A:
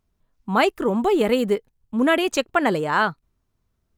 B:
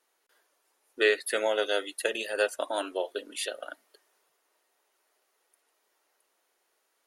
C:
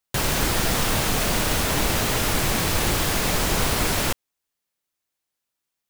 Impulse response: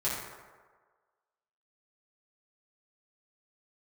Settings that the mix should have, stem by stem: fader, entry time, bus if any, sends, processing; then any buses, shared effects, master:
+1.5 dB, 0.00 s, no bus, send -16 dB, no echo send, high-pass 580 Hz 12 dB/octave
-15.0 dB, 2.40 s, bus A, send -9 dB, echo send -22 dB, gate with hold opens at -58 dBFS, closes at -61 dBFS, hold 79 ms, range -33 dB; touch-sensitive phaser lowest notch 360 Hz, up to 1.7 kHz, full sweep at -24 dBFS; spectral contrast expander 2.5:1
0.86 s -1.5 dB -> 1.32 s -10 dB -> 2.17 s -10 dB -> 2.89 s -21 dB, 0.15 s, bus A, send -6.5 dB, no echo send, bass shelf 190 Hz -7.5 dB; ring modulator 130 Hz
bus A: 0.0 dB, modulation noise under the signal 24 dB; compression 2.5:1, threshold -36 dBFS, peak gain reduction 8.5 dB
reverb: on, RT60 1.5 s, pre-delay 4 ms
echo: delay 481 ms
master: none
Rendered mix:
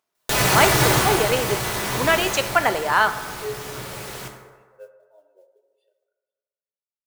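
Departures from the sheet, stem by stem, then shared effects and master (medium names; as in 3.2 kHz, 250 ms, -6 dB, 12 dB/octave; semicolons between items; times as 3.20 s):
stem B: missing touch-sensitive phaser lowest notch 360 Hz, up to 1.7 kHz, full sweep at -24 dBFS; stem C -1.5 dB -> +8.0 dB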